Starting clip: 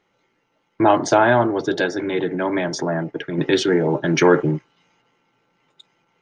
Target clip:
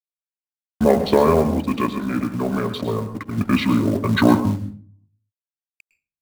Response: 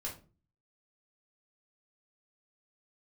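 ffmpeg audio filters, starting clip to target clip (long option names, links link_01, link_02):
-filter_complex "[0:a]asetrate=29433,aresample=44100,atempo=1.49831,aeval=exprs='sgn(val(0))*max(abs(val(0))-0.0106,0)':channel_layout=same,acrusher=bits=6:mode=log:mix=0:aa=0.000001,asplit=2[link_01][link_02];[1:a]atrim=start_sample=2205,asetrate=38808,aresample=44100,adelay=106[link_03];[link_02][link_03]afir=irnorm=-1:irlink=0,volume=-11.5dB[link_04];[link_01][link_04]amix=inputs=2:normalize=0"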